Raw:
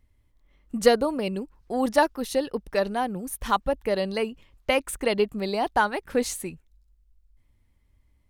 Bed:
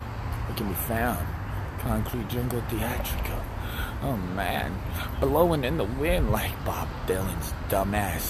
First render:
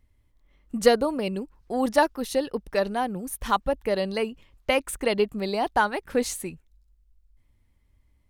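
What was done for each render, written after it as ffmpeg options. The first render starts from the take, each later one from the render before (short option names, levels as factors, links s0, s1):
-af anull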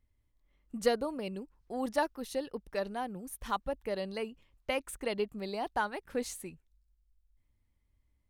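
-af "volume=0.316"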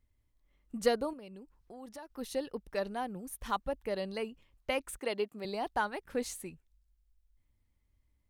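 -filter_complex "[0:a]asettb=1/sr,asplit=3[s0][s1][s2];[s0]atrim=end=1.134[s3];[s1]atrim=start=1.13:end=2.1,asetpts=PTS-STARTPTS,afade=t=in:d=0.004:c=qsin,afade=t=out:st=0.966:d=0.004:c=qsin,acompressor=threshold=0.00355:ratio=3:attack=3.2:release=140:knee=1:detection=peak[s4];[s2]atrim=start=2.096[s5];[s3][s4]acrossfade=d=0.004:c1=hsin:c2=qsin[s6];[s6][s5]acrossfade=d=0.004:c1=qsin:c2=hsin,asettb=1/sr,asplit=3[s7][s8][s9];[s7]atrim=end=4.994[s10];[s8]atrim=start=4.99:end=5.45,asetpts=PTS-STARTPTS,afade=t=in:d=0.004:c=qsin,afade=t=out:st=0.456:d=0.004:c=qsin,highpass=250[s11];[s9]atrim=start=5.446[s12];[s10][s11]acrossfade=d=0.004:c1=hsin:c2=qsin[s13];[s13][s12]acrossfade=d=0.004:c1=qsin:c2=hsin"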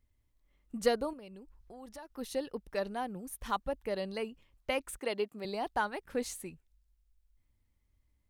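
-filter_complex "[0:a]asettb=1/sr,asplit=3[s0][s1][s2];[s0]atrim=end=0.774[s3];[s1]atrim=start=0.77:end=2.05,asetpts=PTS-STARTPTS,afade=t=in:d=0.004:c=qsin,afade=t=out:st=1.276:d=0.004:c=qsin,asubboost=boost=7:cutoff=120[s4];[s2]atrim=start=2.046[s5];[s3][s4]acrossfade=d=0.004:c1=hsin:c2=qsin[s6];[s6][s5]acrossfade=d=0.004:c1=qsin:c2=hsin"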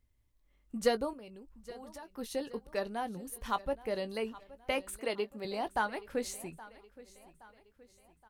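-filter_complex "[0:a]asplit=2[s0][s1];[s1]adelay=18,volume=0.251[s2];[s0][s2]amix=inputs=2:normalize=0,aecho=1:1:821|1642|2463|3284:0.112|0.0527|0.0248|0.0116"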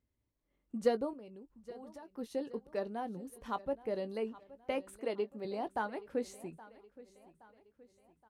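-af "bandpass=f=310:t=q:w=0.63:csg=0,crystalizer=i=4:c=0"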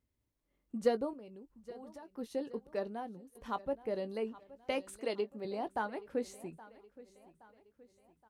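-filter_complex "[0:a]asettb=1/sr,asplit=3[s0][s1][s2];[s0]atrim=end=4.564[s3];[s1]atrim=start=4.56:end=5.21,asetpts=PTS-STARTPTS,afade=t=in:d=0.004:c=qsin,afade=t=out:st=0.646:d=0.004:c=qsin,equalizer=f=5400:t=o:w=1.8:g=8.5[s4];[s2]atrim=start=5.206[s5];[s3][s4]acrossfade=d=0.004:c1=hsin:c2=qsin[s6];[s6][s5]acrossfade=d=0.004:c1=qsin:c2=hsin,asplit=2[s7][s8];[s7]atrim=end=3.35,asetpts=PTS-STARTPTS,afade=t=out:st=2.86:d=0.49:silence=0.177828[s9];[s8]atrim=start=3.35,asetpts=PTS-STARTPTS,afade=t=in:d=0.004:c=hsin:silence=0.177828[s10];[s9][s10]concat=n=2:v=0:a=1"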